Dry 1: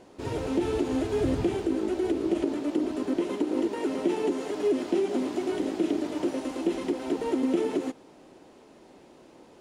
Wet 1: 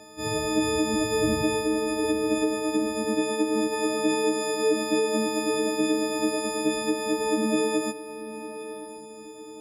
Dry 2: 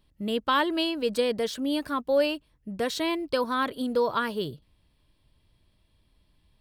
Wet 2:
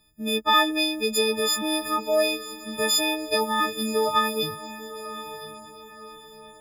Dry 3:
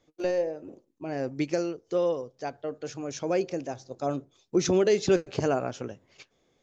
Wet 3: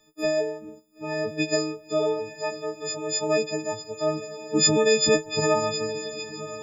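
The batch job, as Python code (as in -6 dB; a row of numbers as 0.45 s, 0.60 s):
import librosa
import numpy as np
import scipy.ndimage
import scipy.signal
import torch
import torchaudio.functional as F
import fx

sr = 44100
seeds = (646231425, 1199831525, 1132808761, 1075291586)

y = fx.freq_snap(x, sr, grid_st=6)
y = fx.echo_diffused(y, sr, ms=993, feedback_pct=42, wet_db=-13.0)
y = y * 10.0 ** (-26 / 20.0) / np.sqrt(np.mean(np.square(y)))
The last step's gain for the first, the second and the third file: +1.0 dB, +0.5 dB, +1.5 dB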